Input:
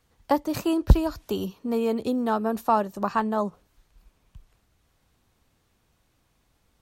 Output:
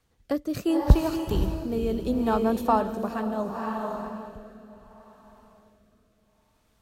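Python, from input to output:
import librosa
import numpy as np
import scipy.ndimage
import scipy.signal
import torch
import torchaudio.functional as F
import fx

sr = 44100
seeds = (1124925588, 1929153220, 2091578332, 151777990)

y = fx.echo_diffused(x, sr, ms=504, feedback_pct=41, wet_db=-5.0)
y = fx.rotary(y, sr, hz=0.7)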